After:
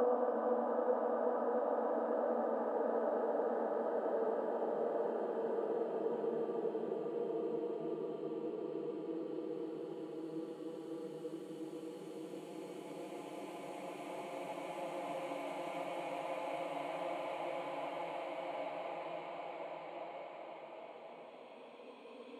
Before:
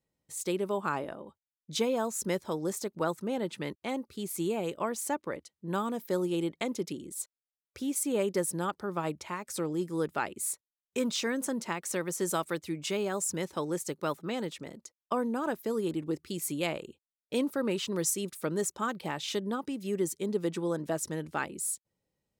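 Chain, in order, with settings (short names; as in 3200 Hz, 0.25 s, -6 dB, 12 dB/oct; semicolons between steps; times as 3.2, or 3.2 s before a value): band-pass sweep 550 Hz -> 1700 Hz, 14.96–18.74; Paulstretch 12×, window 1.00 s, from 15.26; gain +2.5 dB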